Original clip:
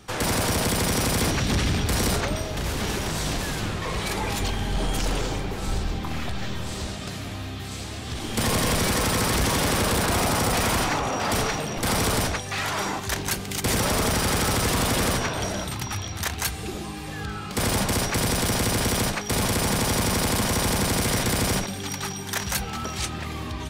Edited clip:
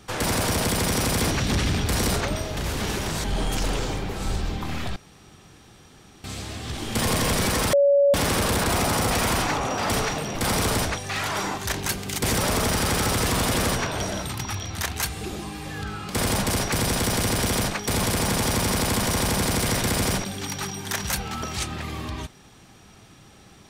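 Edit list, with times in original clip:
3.24–4.66 s: delete
6.38–7.66 s: room tone
9.15–9.56 s: bleep 565 Hz -14 dBFS

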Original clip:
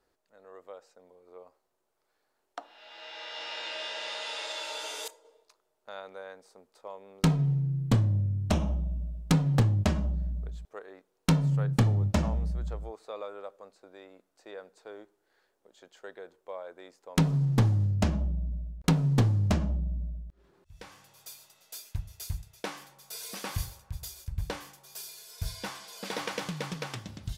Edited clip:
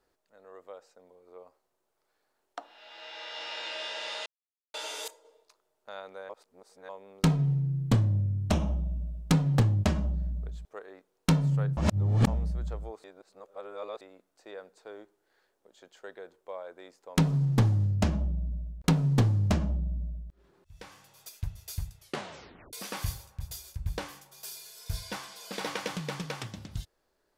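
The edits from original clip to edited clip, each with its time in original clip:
4.26–4.74 s: mute
6.29–6.89 s: reverse
11.77–12.27 s: reverse
13.04–14.01 s: reverse
21.29–21.81 s: delete
22.51 s: tape stop 0.74 s

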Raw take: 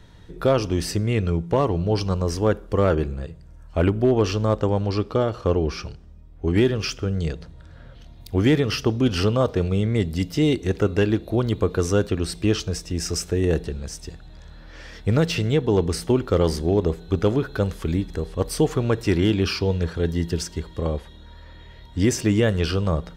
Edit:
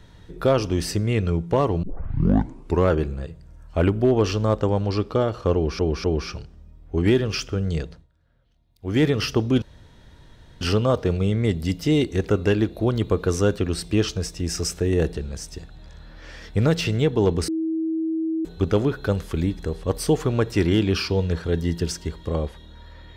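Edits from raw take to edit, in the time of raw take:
1.83 s: tape start 1.07 s
5.54–5.79 s: loop, 3 plays
7.34–8.54 s: dip -21 dB, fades 0.24 s
9.12 s: insert room tone 0.99 s
15.99–16.96 s: bleep 322 Hz -21.5 dBFS

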